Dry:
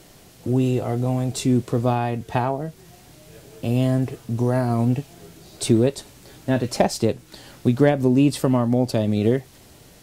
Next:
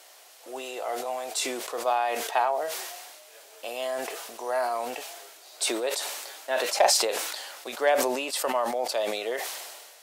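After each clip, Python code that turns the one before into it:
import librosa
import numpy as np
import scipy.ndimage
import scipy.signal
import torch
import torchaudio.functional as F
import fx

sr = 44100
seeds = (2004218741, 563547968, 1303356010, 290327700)

y = scipy.signal.sosfilt(scipy.signal.butter(4, 600.0, 'highpass', fs=sr, output='sos'), x)
y = fx.sustainer(y, sr, db_per_s=36.0)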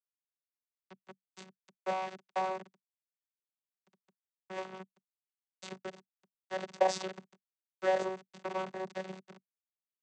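y = np.where(np.abs(x) >= 10.0 ** (-21.5 / 20.0), x, 0.0)
y = fx.vocoder(y, sr, bands=16, carrier='saw', carrier_hz=188.0)
y = y * 10.0 ** (-6.0 / 20.0)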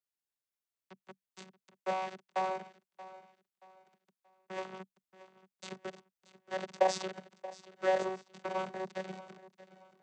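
y = fx.echo_feedback(x, sr, ms=629, feedback_pct=33, wet_db=-17.0)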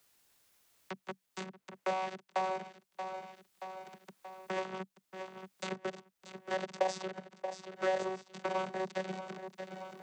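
y = fx.band_squash(x, sr, depth_pct=70)
y = y * 10.0 ** (2.5 / 20.0)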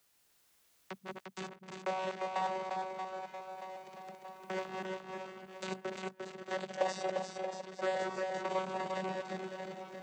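y = fx.reverse_delay(x, sr, ms=142, wet_db=-4.5)
y = y + 10.0 ** (-4.5 / 20.0) * np.pad(y, (int(350 * sr / 1000.0), 0))[:len(y)]
y = y * 10.0 ** (-2.5 / 20.0)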